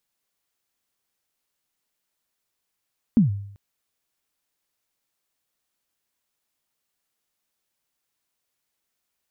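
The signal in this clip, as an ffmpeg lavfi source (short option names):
-f lavfi -i "aevalsrc='0.316*pow(10,-3*t/0.68)*sin(2*PI*(250*0.131/log(100/250)*(exp(log(100/250)*min(t,0.131)/0.131)-1)+100*max(t-0.131,0)))':d=0.39:s=44100"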